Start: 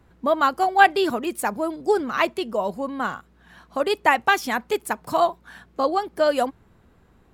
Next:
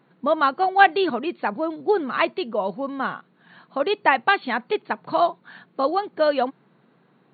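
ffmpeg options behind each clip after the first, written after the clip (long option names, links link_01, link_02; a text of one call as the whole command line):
ffmpeg -i in.wav -af "afftfilt=real='re*between(b*sr/4096,120,4500)':imag='im*between(b*sr/4096,120,4500)':win_size=4096:overlap=0.75" out.wav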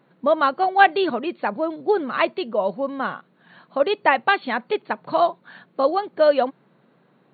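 ffmpeg -i in.wav -af "equalizer=frequency=570:width=5.1:gain=5.5" out.wav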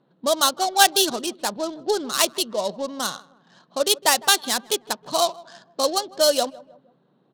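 ffmpeg -i in.wav -filter_complex "[0:a]adynamicsmooth=sensitivity=6:basefreq=1400,asplit=2[link_01][link_02];[link_02]adelay=157,lowpass=frequency=1400:poles=1,volume=-20dB,asplit=2[link_03][link_04];[link_04]adelay=157,lowpass=frequency=1400:poles=1,volume=0.44,asplit=2[link_05][link_06];[link_06]adelay=157,lowpass=frequency=1400:poles=1,volume=0.44[link_07];[link_01][link_03][link_05][link_07]amix=inputs=4:normalize=0,aexciter=amount=9.6:drive=7.4:freq=3400,volume=-3.5dB" out.wav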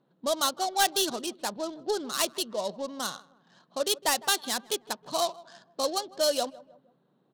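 ffmpeg -i in.wav -af "asoftclip=type=tanh:threshold=-10dB,volume=-6dB" out.wav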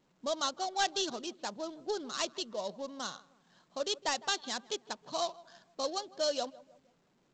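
ffmpeg -i in.wav -af "volume=-6dB" -ar 16000 -c:a pcm_alaw out.wav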